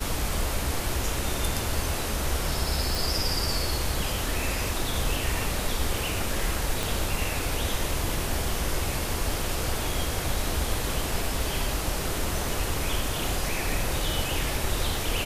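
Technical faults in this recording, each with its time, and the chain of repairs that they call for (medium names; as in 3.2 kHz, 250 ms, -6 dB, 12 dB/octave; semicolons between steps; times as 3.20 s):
2.95 s: pop
6.83 s: pop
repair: de-click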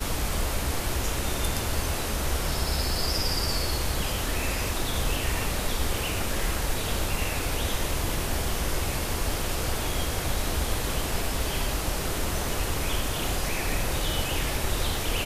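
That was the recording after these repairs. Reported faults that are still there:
6.83 s: pop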